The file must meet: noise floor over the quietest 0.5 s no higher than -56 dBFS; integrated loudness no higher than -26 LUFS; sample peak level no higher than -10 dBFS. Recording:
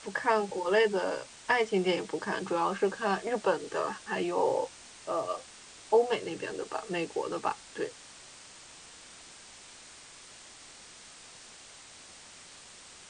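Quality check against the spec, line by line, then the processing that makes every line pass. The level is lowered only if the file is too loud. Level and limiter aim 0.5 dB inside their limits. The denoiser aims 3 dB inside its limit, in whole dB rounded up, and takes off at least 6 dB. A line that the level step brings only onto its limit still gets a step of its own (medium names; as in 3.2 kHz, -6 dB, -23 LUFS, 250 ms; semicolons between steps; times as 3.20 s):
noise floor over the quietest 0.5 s -51 dBFS: fail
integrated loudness -31.0 LUFS: pass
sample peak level -12.0 dBFS: pass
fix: noise reduction 8 dB, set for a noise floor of -51 dBFS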